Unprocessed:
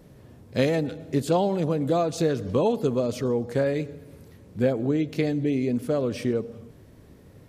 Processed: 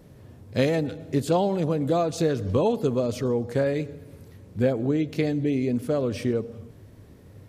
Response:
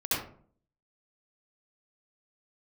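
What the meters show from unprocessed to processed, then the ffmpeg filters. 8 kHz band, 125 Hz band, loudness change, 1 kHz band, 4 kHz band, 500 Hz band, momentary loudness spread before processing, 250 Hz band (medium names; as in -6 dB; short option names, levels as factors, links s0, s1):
0.0 dB, +1.0 dB, 0.0 dB, 0.0 dB, 0.0 dB, 0.0 dB, 7 LU, 0.0 dB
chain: -af "equalizer=f=98:t=o:w=0.31:g=7.5"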